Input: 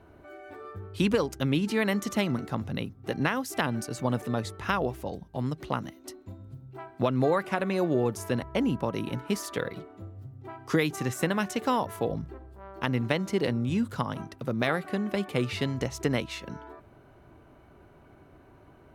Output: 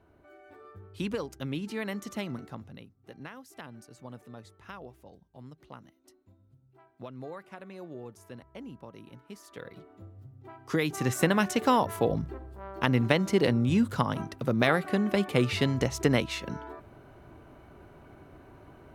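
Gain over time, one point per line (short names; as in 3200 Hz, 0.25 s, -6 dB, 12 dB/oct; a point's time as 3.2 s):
2.43 s -8 dB
2.87 s -17 dB
9.38 s -17 dB
9.92 s -5.5 dB
10.63 s -5.5 dB
11.12 s +3 dB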